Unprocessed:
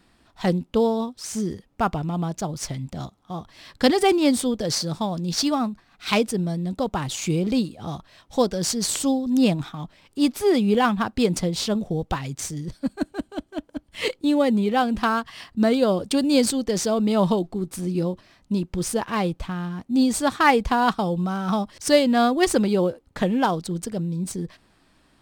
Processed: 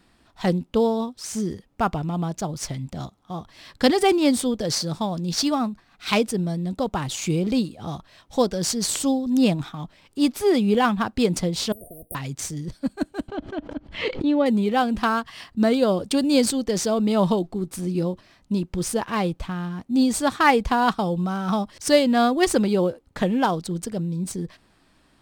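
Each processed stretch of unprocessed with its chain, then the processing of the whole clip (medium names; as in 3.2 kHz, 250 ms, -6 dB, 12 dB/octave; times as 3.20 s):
11.72–12.15 s: brick-wall FIR band-stop 720–8600 Hz + treble shelf 11 kHz +9.5 dB + spectrum-flattening compressor 10:1
13.28–14.46 s: distance through air 210 m + swell ahead of each attack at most 120 dB/s
whole clip: none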